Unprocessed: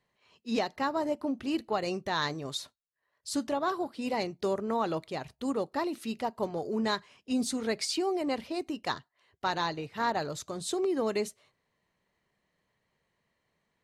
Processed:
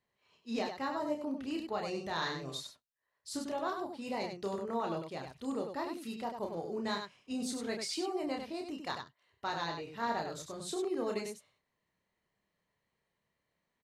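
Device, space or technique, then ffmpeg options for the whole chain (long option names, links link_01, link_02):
slapback doubling: -filter_complex "[0:a]asplit=3[link_01][link_02][link_03];[link_02]adelay=30,volume=-4dB[link_04];[link_03]adelay=98,volume=-6dB[link_05];[link_01][link_04][link_05]amix=inputs=3:normalize=0,asettb=1/sr,asplit=3[link_06][link_07][link_08];[link_06]atrim=end=1.904[link_09];[link_07]atrim=start=1.9:end=2.58,asetpts=PTS-STARTPTS,afade=type=in:duration=0.004:curve=qsin,afade=type=out:start_time=0.676:duration=0.004:curve=qsin,asplit=2[link_10][link_11];[link_11]adelay=43,volume=-7.5dB[link_12];[link_10][link_12]amix=inputs=2:normalize=0,atrim=end_sample=29988[link_13];[link_08]atrim=start=2.576[link_14];[link_09][link_13]acrossfade=duration=0.004:curve1=hsin:curve2=qsin[link_15];[link_15][link_14]acrossfade=duration=0.004:curve1=qsin:curve2=hsin,volume=-7.5dB"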